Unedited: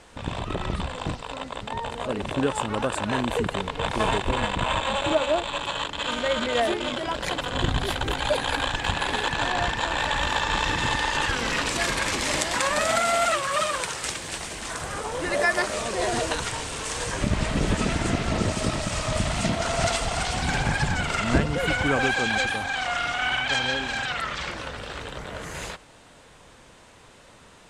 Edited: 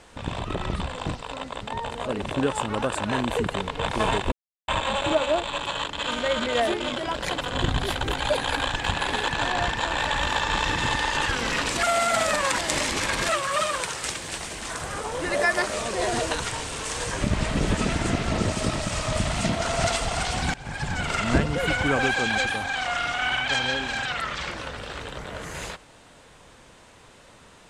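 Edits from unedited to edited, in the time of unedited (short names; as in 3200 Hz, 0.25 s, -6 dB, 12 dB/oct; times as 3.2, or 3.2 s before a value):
4.32–4.68 mute
11.83–13.29 reverse
20.54–21.11 fade in, from -24 dB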